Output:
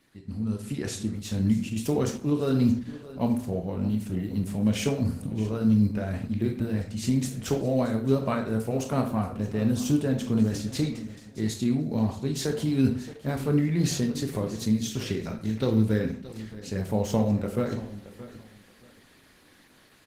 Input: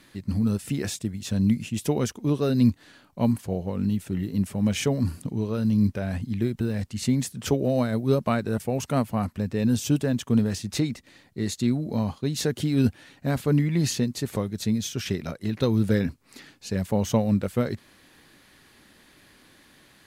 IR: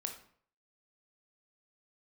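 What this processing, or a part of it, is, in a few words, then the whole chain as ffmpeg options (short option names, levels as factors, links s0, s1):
speakerphone in a meeting room: -filter_complex "[0:a]asplit=3[s0][s1][s2];[s0]afade=t=out:st=1.22:d=0.02[s3];[s1]bandreject=f=60:t=h:w=6,bandreject=f=120:t=h:w=6,bandreject=f=180:t=h:w=6,bandreject=f=240:t=h:w=6,afade=t=in:st=1.22:d=0.02,afade=t=out:st=2.4:d=0.02[s4];[s2]afade=t=in:st=2.4:d=0.02[s5];[s3][s4][s5]amix=inputs=3:normalize=0,aecho=1:1:624|1248:0.158|0.0333[s6];[1:a]atrim=start_sample=2205[s7];[s6][s7]afir=irnorm=-1:irlink=0,asplit=2[s8][s9];[s9]adelay=100,highpass=300,lowpass=3400,asoftclip=type=hard:threshold=0.106,volume=0.0631[s10];[s8][s10]amix=inputs=2:normalize=0,dynaudnorm=f=120:g=11:m=2.51,volume=0.422" -ar 48000 -c:a libopus -b:a 16k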